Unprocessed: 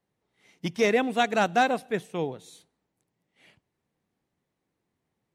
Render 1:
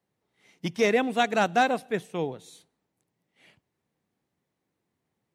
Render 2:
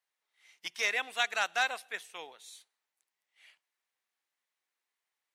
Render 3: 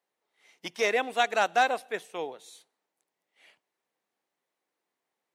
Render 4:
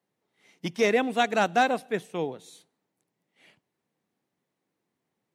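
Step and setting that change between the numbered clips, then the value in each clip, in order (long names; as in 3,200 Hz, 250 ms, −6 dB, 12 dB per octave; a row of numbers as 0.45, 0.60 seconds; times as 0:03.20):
high-pass filter, corner frequency: 63, 1,400, 530, 160 Hertz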